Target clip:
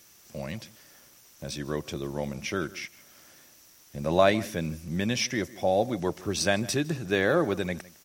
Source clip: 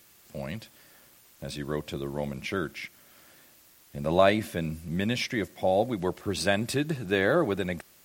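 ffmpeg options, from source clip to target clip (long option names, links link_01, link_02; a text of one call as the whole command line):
ffmpeg -i in.wav -filter_complex "[0:a]equalizer=frequency=5800:width=5.1:gain=11.5,asplit=2[link_01][link_02];[link_02]adelay=157.4,volume=-20dB,highshelf=frequency=4000:gain=-3.54[link_03];[link_01][link_03]amix=inputs=2:normalize=0" out.wav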